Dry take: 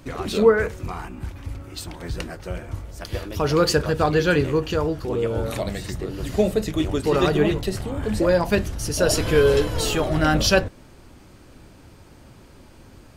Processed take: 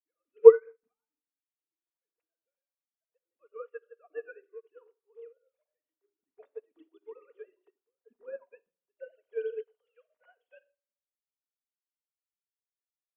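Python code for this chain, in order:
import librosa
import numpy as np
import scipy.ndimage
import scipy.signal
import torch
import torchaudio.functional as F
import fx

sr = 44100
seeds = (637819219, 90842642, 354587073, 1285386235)

y = fx.sine_speech(x, sr)
y = fx.room_shoebox(y, sr, seeds[0], volume_m3=3200.0, walls='furnished', distance_m=1.8)
y = fx.upward_expand(y, sr, threshold_db=-35.0, expansion=2.5)
y = y * librosa.db_to_amplitude(-6.0)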